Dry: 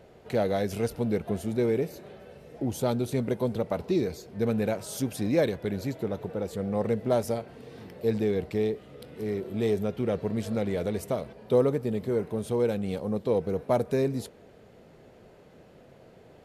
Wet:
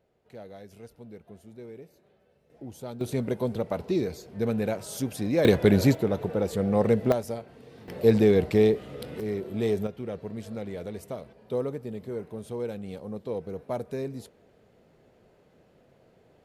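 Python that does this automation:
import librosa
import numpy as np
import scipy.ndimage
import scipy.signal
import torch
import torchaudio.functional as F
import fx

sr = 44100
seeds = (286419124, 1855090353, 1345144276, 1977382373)

y = fx.gain(x, sr, db=fx.steps((0.0, -18.0), (2.5, -11.5), (3.01, -0.5), (5.45, 11.5), (5.95, 5.0), (7.12, -4.0), (7.88, 7.0), (9.2, 0.0), (9.87, -7.0)))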